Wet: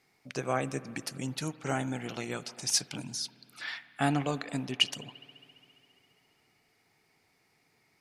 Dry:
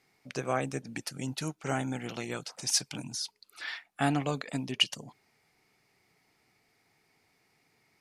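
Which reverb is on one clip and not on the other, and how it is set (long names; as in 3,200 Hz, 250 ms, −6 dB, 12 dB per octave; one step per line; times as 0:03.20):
spring reverb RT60 2.9 s, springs 55 ms, chirp 30 ms, DRR 16 dB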